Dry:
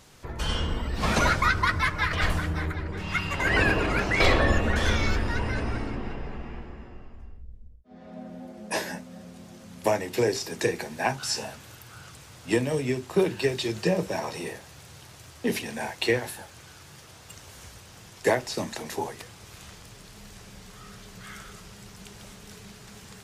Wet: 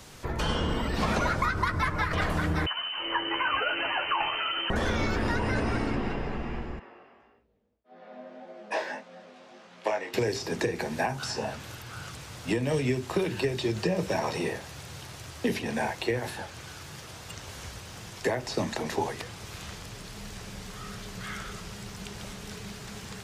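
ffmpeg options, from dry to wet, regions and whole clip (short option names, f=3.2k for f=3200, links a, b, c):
-filter_complex "[0:a]asettb=1/sr,asplit=3[a][b][c];[a]atrim=end=2.664[d];[b]atrim=start=2.66:end=4.7,asetpts=PTS-STARTPTS,afade=t=in:d=0.004:c=qsin,afade=t=out:st=2.036:d=0.004:c=qsin,asplit=2[e][f];[f]adelay=12,volume=-4.5dB[g];[e][g]amix=inputs=2:normalize=0,atrim=end_sample=89964,lowpass=f=2.6k:t=q:w=0.5098,lowpass=f=2.6k:t=q:w=0.6013,lowpass=f=2.6k:t=q:w=0.9,lowpass=f=2.6k:t=q:w=2.563,afreqshift=-3100[h];[c]atrim=start=4.696[i];[d][h]acrossfade=d=0.004:c1=hsin:c2=qsin[j];[j][i]acrossfade=d=0.004:c1=qsin:c2=hsin,asettb=1/sr,asplit=3[k][l][m];[k]atrim=end=6.794[n];[l]atrim=start=6.79:end=10.14,asetpts=PTS-STARTPTS,afade=t=in:d=0.004:c=qsin,afade=t=out:st=3.346:d=0.004:c=qsin,highpass=470,lowpass=3.5k,flanger=delay=17:depth=3.7:speed=1.7[o];[m]atrim=start=10.136[p];[n][o]acrossfade=d=0.004:c1=hsin:c2=qsin[q];[q][p]acrossfade=d=0.004:c1=qsin:c2=hsin,alimiter=limit=-16.5dB:level=0:latency=1:release=199,acrossover=split=120|1400|6200[r][s][t][u];[r]acompressor=threshold=-38dB:ratio=4[v];[s]acompressor=threshold=-31dB:ratio=4[w];[t]acompressor=threshold=-42dB:ratio=4[x];[u]acompressor=threshold=-58dB:ratio=4[y];[v][w][x][y]amix=inputs=4:normalize=0,volume=5.5dB"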